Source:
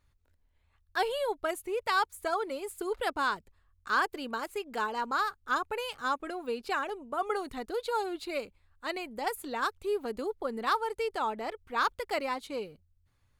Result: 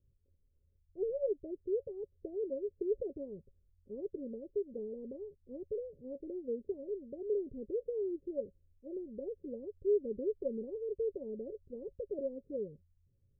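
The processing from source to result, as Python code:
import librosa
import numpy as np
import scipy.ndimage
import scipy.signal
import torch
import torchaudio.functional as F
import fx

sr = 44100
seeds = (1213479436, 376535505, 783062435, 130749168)

y = fx.wiener(x, sr, points=25)
y = scipy.signal.sosfilt(scipy.signal.cheby1(6, 6, 570.0, 'lowpass', fs=sr, output='sos'), y)
y = y * librosa.db_to_amplitude(2.5)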